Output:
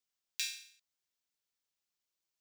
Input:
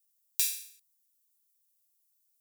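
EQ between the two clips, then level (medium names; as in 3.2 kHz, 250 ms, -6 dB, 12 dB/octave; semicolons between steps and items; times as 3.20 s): distance through air 170 m; treble shelf 10 kHz +8 dB; +3.5 dB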